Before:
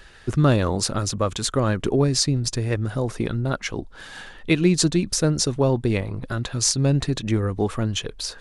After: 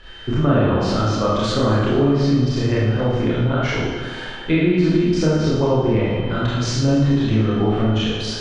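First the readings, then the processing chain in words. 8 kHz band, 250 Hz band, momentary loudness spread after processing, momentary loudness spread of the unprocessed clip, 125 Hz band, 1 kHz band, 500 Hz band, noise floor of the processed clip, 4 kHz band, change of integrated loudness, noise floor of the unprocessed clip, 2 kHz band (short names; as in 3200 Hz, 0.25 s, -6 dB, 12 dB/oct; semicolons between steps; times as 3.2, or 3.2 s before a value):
-10.5 dB, +5.5 dB, 5 LU, 10 LU, +4.0 dB, +5.5 dB, +5.0 dB, -31 dBFS, 0.0 dB, +4.0 dB, -44 dBFS, +4.0 dB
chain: high shelf 6500 Hz -8 dB; treble ducked by the level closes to 2500 Hz, closed at -17.5 dBFS; whine 3100 Hz -50 dBFS; Schroeder reverb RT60 1.1 s, combs from 25 ms, DRR -8.5 dB; compressor 2:1, threshold -16 dBFS, peak gain reduction 6.5 dB; air absorption 77 m; tape echo 0.224 s, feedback 72%, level -15 dB, low-pass 5100 Hz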